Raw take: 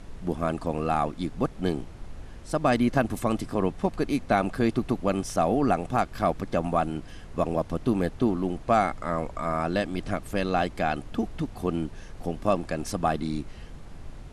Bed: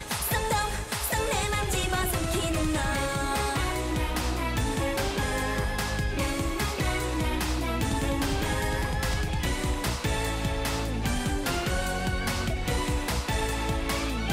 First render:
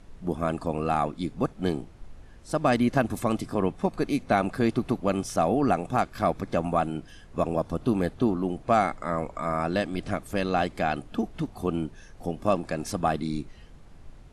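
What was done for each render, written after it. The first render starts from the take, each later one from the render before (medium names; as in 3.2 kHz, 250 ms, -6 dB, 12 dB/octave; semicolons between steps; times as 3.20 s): noise print and reduce 7 dB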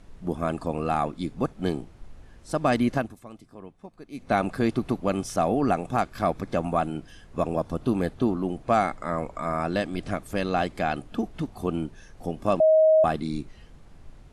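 2.91–4.35 s: dip -18 dB, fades 0.24 s; 12.60–13.04 s: bleep 631 Hz -14 dBFS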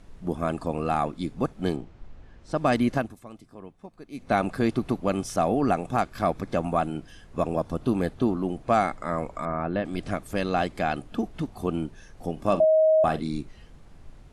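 1.76–2.57 s: distance through air 98 m; 9.45–9.85 s: distance through air 460 m; 12.32–13.28 s: doubling 45 ms -13 dB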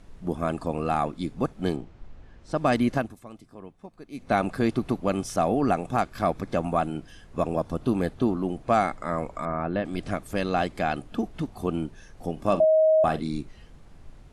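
no audible change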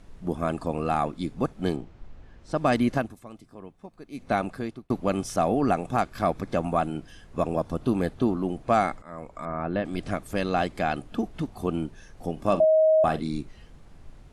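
4.22–4.90 s: fade out; 9.02–9.74 s: fade in, from -18.5 dB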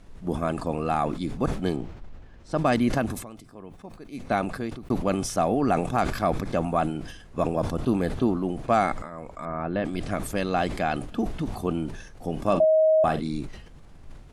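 decay stretcher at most 66 dB/s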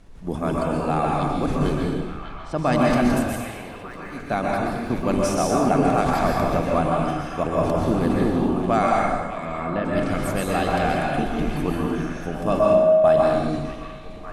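repeats whose band climbs or falls 596 ms, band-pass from 2.7 kHz, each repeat -0.7 oct, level -7 dB; plate-style reverb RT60 1.2 s, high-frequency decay 0.8×, pre-delay 110 ms, DRR -3 dB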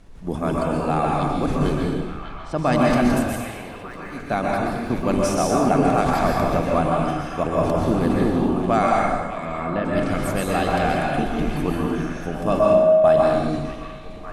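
trim +1 dB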